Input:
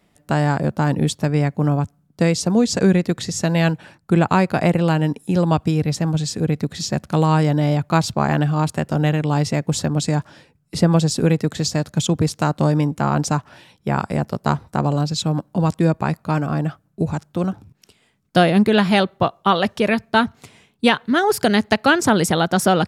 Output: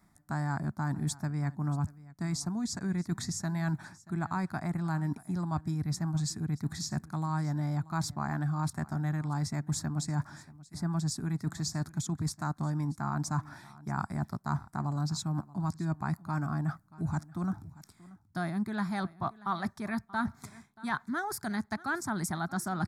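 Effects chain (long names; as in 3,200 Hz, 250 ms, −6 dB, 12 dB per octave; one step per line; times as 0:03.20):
reversed playback
downward compressor 6 to 1, threshold −26 dBFS, peak gain reduction 15.5 dB
reversed playback
phaser with its sweep stopped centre 1,200 Hz, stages 4
single-tap delay 632 ms −20 dB
level −1.5 dB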